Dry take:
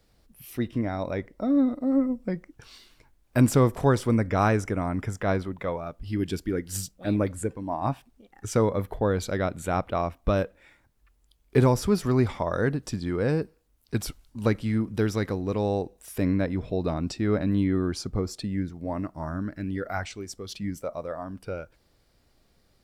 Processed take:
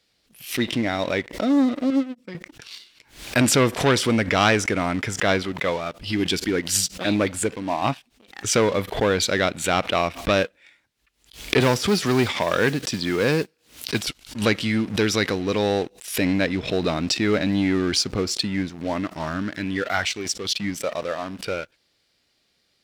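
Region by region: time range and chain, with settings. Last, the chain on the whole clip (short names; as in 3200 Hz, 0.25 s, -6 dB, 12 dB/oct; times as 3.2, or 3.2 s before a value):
1.9–2.35 HPF 95 Hz + bell 780 Hz -9.5 dB 0.71 oct + upward expander 2.5:1, over -43 dBFS
11.6–14.07 HPF 83 Hz + de-esser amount 80% + modulation noise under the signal 29 dB
whole clip: sample leveller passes 2; weighting filter D; backwards sustainer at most 140 dB/s; gain -1.5 dB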